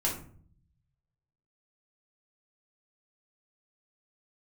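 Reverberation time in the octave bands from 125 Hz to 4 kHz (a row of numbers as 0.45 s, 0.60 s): 1.5 s, 0.90 s, 0.55 s, 0.45 s, 0.40 s, 0.30 s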